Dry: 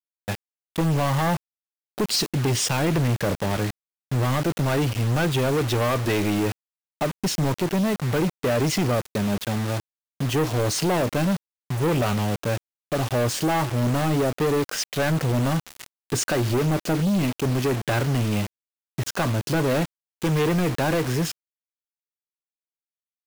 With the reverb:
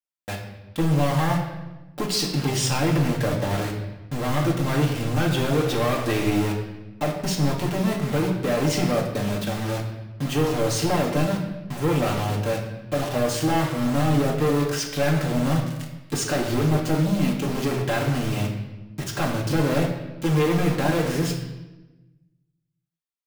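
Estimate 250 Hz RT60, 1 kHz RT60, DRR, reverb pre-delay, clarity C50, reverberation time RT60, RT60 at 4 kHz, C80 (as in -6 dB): 1.4 s, 1.0 s, -1.5 dB, 4 ms, 5.5 dB, 1.1 s, 0.90 s, 7.5 dB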